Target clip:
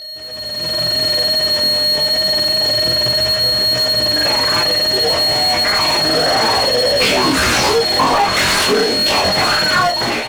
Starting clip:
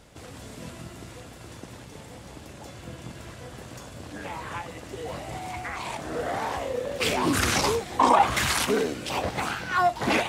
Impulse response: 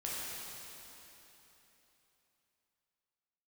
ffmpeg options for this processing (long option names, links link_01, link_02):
-filter_complex "[0:a]aeval=exprs='val(0)+0.0316*sin(2*PI*4300*n/s)':channel_layout=same,asplit=2[link_01][link_02];[link_02]adelay=26,volume=-4.5dB[link_03];[link_01][link_03]amix=inputs=2:normalize=0,asplit=2[link_04][link_05];[link_05]acrusher=samples=36:mix=1:aa=0.000001,volume=-7dB[link_06];[link_04][link_06]amix=inputs=2:normalize=0,acompressor=threshold=-23dB:ratio=6,flanger=delay=15.5:depth=6.2:speed=0.28,asplit=2[link_07][link_08];[link_08]highpass=frequency=720:poles=1,volume=15dB,asoftclip=type=tanh:threshold=-23.5dB[link_09];[link_07][link_09]amix=inputs=2:normalize=0,lowpass=frequency=5600:poles=1,volume=-6dB,dynaudnorm=framelen=270:gausssize=5:maxgain=15.5dB"